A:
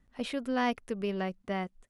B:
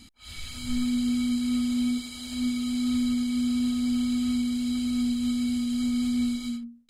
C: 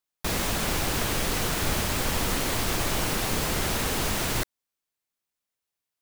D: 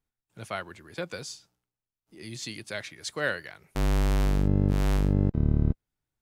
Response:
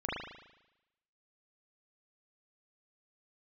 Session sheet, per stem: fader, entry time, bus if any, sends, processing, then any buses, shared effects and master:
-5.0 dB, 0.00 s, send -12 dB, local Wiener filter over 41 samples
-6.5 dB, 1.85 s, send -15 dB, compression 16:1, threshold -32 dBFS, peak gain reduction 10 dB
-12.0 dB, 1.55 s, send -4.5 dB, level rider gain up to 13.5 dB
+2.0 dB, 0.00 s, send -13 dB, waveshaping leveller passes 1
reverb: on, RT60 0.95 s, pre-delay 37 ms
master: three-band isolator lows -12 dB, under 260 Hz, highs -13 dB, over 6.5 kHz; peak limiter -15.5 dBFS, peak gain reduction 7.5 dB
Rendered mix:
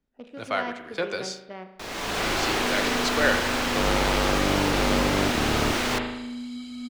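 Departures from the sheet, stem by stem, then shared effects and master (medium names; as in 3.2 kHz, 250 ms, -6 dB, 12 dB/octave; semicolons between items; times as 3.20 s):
stem B: missing compression 16:1, threshold -32 dBFS, peak gain reduction 10 dB; master: missing peak limiter -15.5 dBFS, peak gain reduction 7.5 dB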